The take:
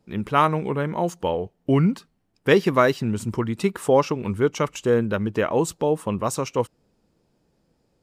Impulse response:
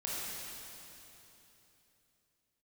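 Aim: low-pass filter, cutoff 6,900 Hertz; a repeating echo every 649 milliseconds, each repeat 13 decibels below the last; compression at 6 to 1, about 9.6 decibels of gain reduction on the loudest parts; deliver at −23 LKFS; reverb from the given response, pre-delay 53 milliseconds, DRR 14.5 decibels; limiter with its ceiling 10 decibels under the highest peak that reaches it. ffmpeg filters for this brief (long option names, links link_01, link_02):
-filter_complex "[0:a]lowpass=6900,acompressor=threshold=-22dB:ratio=6,alimiter=limit=-21.5dB:level=0:latency=1,aecho=1:1:649|1298|1947:0.224|0.0493|0.0108,asplit=2[link_01][link_02];[1:a]atrim=start_sample=2205,adelay=53[link_03];[link_02][link_03]afir=irnorm=-1:irlink=0,volume=-18dB[link_04];[link_01][link_04]amix=inputs=2:normalize=0,volume=9dB"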